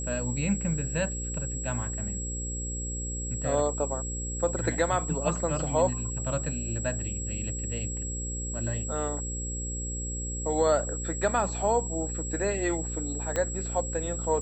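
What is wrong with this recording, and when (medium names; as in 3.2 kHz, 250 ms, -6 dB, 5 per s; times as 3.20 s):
buzz 60 Hz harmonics 9 -35 dBFS
whine 7.7 kHz -35 dBFS
13.36 s: pop -15 dBFS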